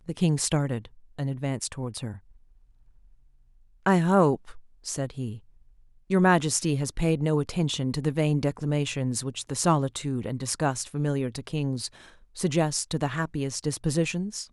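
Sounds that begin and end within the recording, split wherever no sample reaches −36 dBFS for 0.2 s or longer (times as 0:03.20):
0:01.19–0:02.16
0:03.86–0:04.51
0:04.86–0:05.37
0:06.10–0:11.87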